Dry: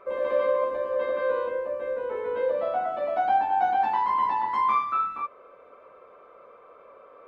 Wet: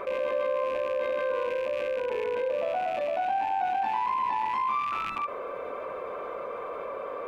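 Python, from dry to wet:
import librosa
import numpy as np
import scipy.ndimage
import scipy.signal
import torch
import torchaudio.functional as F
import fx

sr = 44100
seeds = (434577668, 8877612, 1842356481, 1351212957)

y = fx.rattle_buzz(x, sr, strikes_db=-54.0, level_db=-30.0)
y = fx.notch(y, sr, hz=1300.0, q=10.0)
y = fx.env_flatten(y, sr, amount_pct=70)
y = y * librosa.db_to_amplitude(-7.0)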